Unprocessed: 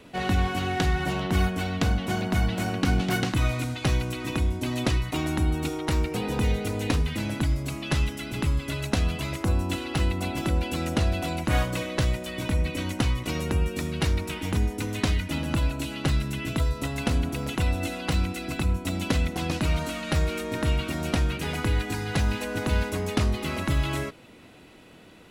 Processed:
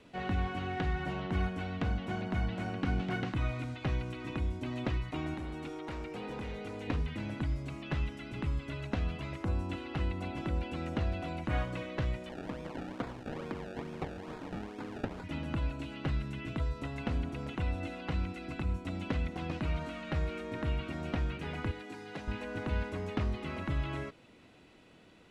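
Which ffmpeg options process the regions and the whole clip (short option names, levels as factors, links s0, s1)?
-filter_complex "[0:a]asettb=1/sr,asplit=3[s0][s1][s2];[s0]atrim=end=5.344[s3];[s1]atrim=start=5.34:end=6.88,asetpts=PTS-STARTPTS,afade=t=in:d=0.004:c=qsin,afade=t=out:st=1.536:d=0.004:c=qsin,equalizer=f=77:t=o:w=2.5:g=-9,asoftclip=type=hard:threshold=0.0447[s4];[s2]atrim=start=6.876[s5];[s3][s4]acrossfade=d=0.004:c1=hsin:c2=qsin[s6];[s6][s5]acrossfade=d=0.004:c1=qsin:c2=hsin,asettb=1/sr,asplit=3[s7][s8][s9];[s7]atrim=end=12.294[s10];[s8]atrim=start=12.29:end=15.24,asetpts=PTS-STARTPTS,afade=t=in:d=0.004:c=qsin,afade=t=out:st=2.946:d=0.004:c=qsin,highpass=200,acrusher=samples=29:mix=1:aa=0.000001:lfo=1:lforange=29:lforate=2.3,bandreject=f=2000:w=29[s11];[s9]atrim=start=15.236[s12];[s10][s11]acrossfade=d=0.004:c1=hsin:c2=qsin[s13];[s13][s12]acrossfade=d=0.004:c1=qsin:c2=hsin,asettb=1/sr,asplit=3[s14][s15][s16];[s14]atrim=end=21.714[s17];[s15]atrim=start=21.71:end=22.28,asetpts=PTS-STARTPTS,afade=t=in:d=0.004:c=qsin,afade=t=out:st=0.566:d=0.004:c=qsin,highpass=280,equalizer=f=1500:t=o:w=2.8:g=-5.5[s18];[s16]atrim=start=22.276[s19];[s17][s18]acrossfade=d=0.004:c1=hsin:c2=qsin[s20];[s20][s19]acrossfade=d=0.004:c1=qsin:c2=hsin,lowpass=7900,acrossover=split=3100[s21][s22];[s22]acompressor=threshold=0.00224:ratio=4:attack=1:release=60[s23];[s21][s23]amix=inputs=2:normalize=0,volume=0.376"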